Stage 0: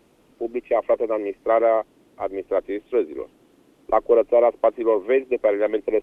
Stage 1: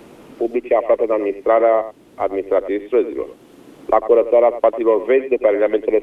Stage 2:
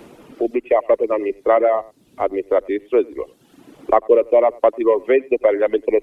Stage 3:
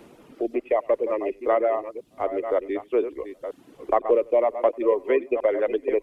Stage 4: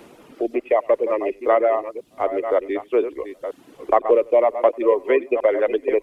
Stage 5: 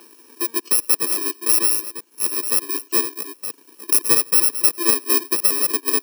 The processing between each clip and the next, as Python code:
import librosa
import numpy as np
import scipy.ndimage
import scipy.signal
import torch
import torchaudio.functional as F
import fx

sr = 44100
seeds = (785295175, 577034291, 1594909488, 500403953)

y1 = x + 10.0 ** (-15.0 / 20.0) * np.pad(x, (int(94 * sr / 1000.0), 0))[:len(x)]
y1 = fx.band_squash(y1, sr, depth_pct=40)
y1 = F.gain(torch.from_numpy(y1), 4.5).numpy()
y2 = fx.dereverb_blind(y1, sr, rt60_s=0.9)
y3 = fx.reverse_delay(y2, sr, ms=502, wet_db=-10)
y3 = F.gain(torch.from_numpy(y3), -6.5).numpy()
y4 = fx.low_shelf(y3, sr, hz=330.0, db=-5.5)
y4 = F.gain(torch.from_numpy(y4), 5.5).numpy()
y5 = fx.bit_reversed(y4, sr, seeds[0], block=64)
y5 = scipy.signal.sosfilt(scipy.signal.butter(4, 290.0, 'highpass', fs=sr, output='sos'), y5)